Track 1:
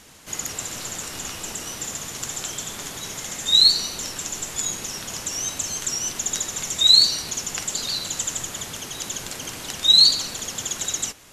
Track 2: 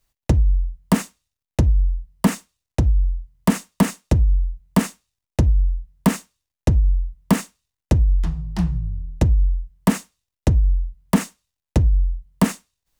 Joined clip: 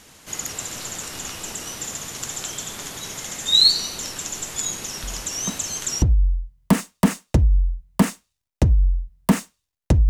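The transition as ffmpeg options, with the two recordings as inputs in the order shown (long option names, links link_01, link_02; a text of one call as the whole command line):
ffmpeg -i cue0.wav -i cue1.wav -filter_complex "[1:a]asplit=2[link_01][link_02];[0:a]apad=whole_dur=10.09,atrim=end=10.09,atrim=end=6.022[link_03];[link_02]atrim=start=2.788:end=6.86[link_04];[link_01]atrim=start=1.8:end=2.79,asetpts=PTS-STARTPTS,volume=-14.5dB,afade=type=in:duration=0.004:curve=hsin,afade=type=out:start_time=0.986:duration=0.004:curve=hsin,adelay=5030[link_05];[link_03][link_04]acrossfade=duration=0.004:curve1=hsin:curve2=hsin[link_06];[link_06][link_05]amix=inputs=2:normalize=0" out.wav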